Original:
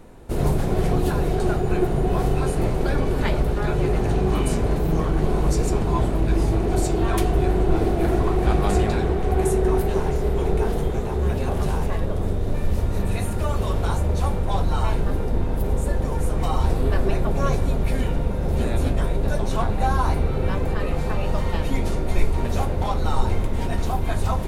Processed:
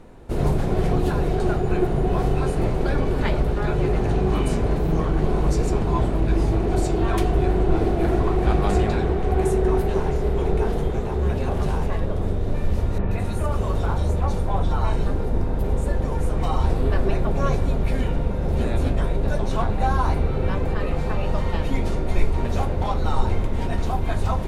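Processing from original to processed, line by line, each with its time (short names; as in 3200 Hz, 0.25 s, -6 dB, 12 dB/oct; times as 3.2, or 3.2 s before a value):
12.98–15.59 bands offset in time lows, highs 0.13 s, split 3000 Hz
whole clip: high shelf 8400 Hz -11 dB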